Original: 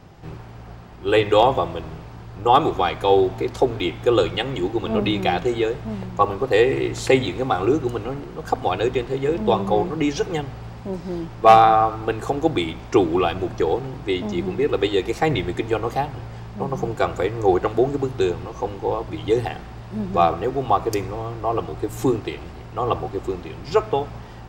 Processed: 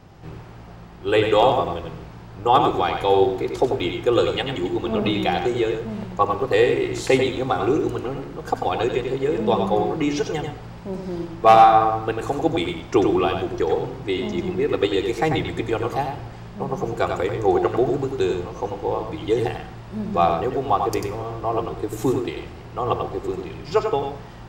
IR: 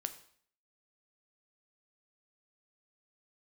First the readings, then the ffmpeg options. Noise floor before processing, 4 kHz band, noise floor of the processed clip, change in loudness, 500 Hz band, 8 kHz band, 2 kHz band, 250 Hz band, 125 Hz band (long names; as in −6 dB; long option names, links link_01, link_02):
−38 dBFS, −0.5 dB, −39 dBFS, −0.5 dB, −0.5 dB, −0.5 dB, −0.5 dB, 0.0 dB, −1.5 dB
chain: -filter_complex "[0:a]asplit=2[link_01][link_02];[1:a]atrim=start_sample=2205,adelay=93[link_03];[link_02][link_03]afir=irnorm=-1:irlink=0,volume=-4.5dB[link_04];[link_01][link_04]amix=inputs=2:normalize=0,volume=-1.5dB"